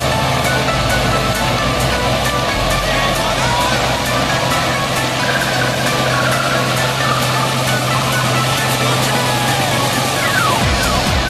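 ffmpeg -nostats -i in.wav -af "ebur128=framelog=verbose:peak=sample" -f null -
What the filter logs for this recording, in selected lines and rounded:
Integrated loudness:
  I:         -14.7 LUFS
  Threshold: -24.7 LUFS
Loudness range:
  LRA:         0.7 LU
  Threshold: -34.7 LUFS
  LRA low:   -15.0 LUFS
  LRA high:  -14.3 LUFS
Sample peak:
  Peak:       -1.9 dBFS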